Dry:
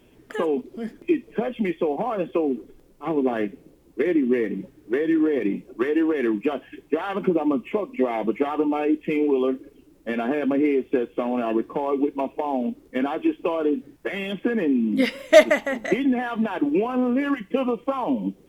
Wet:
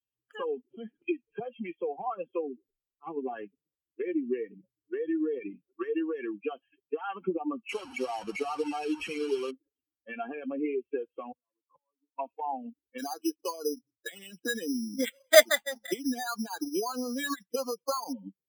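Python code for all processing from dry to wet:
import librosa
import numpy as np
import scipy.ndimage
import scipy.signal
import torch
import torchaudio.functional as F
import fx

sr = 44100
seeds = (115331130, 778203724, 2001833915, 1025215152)

y = fx.chain(x, sr, fx.brickwall_lowpass(high_hz=3700.0),
    fx.band_squash(depth_pct=70), at=(0.7, 1.4))
y = fx.chain(y, sr, fx.delta_mod(bps=64000, step_db=-20.5),
    fx.high_shelf(hz=4000.0, db=-7.5), at=(7.69, 9.51))
y = fx.chain(y, sr, fx.gate_flip(shuts_db=-25.0, range_db=-30),
    fx.ripple_eq(per_octave=1.1, db=10),
    fx.band_squash(depth_pct=70), at=(11.32, 12.19))
y = fx.chain(y, sr, fx.filter_lfo_notch(shape='saw_up', hz=3.8, low_hz=730.0, high_hz=5100.0, q=2.4),
    fx.dynamic_eq(hz=1600.0, q=2.9, threshold_db=-43.0, ratio=4.0, max_db=5),
    fx.resample_bad(factor=8, down='filtered', up='hold'), at=(12.98, 18.13))
y = fx.bin_expand(y, sr, power=2.0)
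y = fx.highpass(y, sr, hz=220.0, slope=6)
y = fx.low_shelf(y, sr, hz=340.0, db=-9.0)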